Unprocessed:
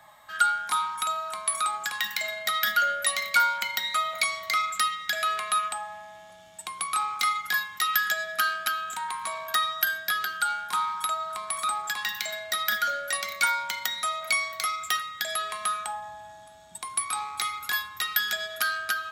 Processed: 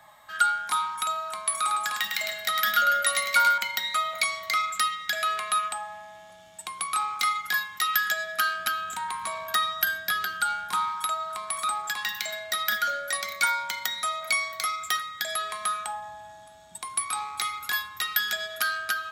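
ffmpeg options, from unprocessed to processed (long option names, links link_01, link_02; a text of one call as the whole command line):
ffmpeg -i in.wav -filter_complex "[0:a]asettb=1/sr,asplit=3[link_01][link_02][link_03];[link_01]atrim=end=1.524[link_04];[link_02]atrim=start=1.52:end=3.58,asetpts=PTS-STARTPTS,afade=type=in:duration=0.004:curve=qsin,afade=type=out:start_time=2.056:duration=0.004:curve=qsin,aecho=1:1:105|284:0.562|0.224,atrim=end_sample=90846[link_05];[link_03]atrim=start=3.576[link_06];[link_04][link_05]acrossfade=duration=0.004:curve1=hsin:curve2=qsin[link_07];[link_07][link_06]acrossfade=duration=0.004:curve1=qsin:curve2=hsin,asettb=1/sr,asplit=3[link_08][link_09][link_10];[link_08]atrim=end=8.574[link_11];[link_09]atrim=start=8.57:end=10.89,asetpts=PTS-STARTPTS,afade=type=in:duration=0.004:curve=qsin,afade=type=out:start_time=2.316:duration=0.004:curve=qsin,lowshelf=frequency=230:gain=8[link_12];[link_10]atrim=start=10.886[link_13];[link_11][link_12]acrossfade=duration=0.004:curve1=hsin:curve2=qsin[link_14];[link_14][link_13]acrossfade=duration=0.004:curve1=qsin:curve2=hsin,asettb=1/sr,asplit=3[link_15][link_16][link_17];[link_15]atrim=end=12.984[link_18];[link_16]atrim=start=12.98:end=15.76,asetpts=PTS-STARTPTS,afade=type=in:duration=0.004:curve=qsin,afade=type=out:start_time=2.776:duration=0.004:curve=qsin,bandreject=frequency=2800:width=12[link_19];[link_17]atrim=start=15.756[link_20];[link_18][link_19]acrossfade=duration=0.004:curve1=hsin:curve2=qsin[link_21];[link_21][link_20]acrossfade=duration=0.004:curve1=qsin:curve2=hsin" out.wav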